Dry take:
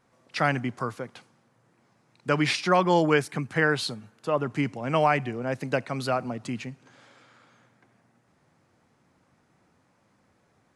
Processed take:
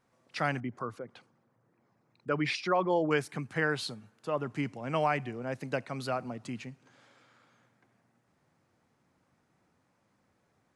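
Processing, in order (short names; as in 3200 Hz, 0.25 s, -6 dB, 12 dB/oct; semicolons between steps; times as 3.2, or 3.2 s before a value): 0.6–3.11 formant sharpening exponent 1.5; gain -6.5 dB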